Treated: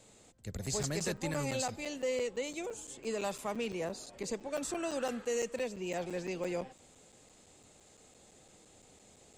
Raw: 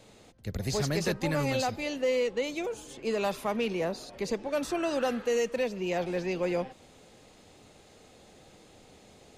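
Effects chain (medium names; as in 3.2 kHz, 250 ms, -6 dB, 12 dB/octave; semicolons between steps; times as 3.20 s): peaking EQ 7.7 kHz +14 dB 0.45 oct; crackling interface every 0.17 s, samples 256, zero, from 0.66 s; trim -6.5 dB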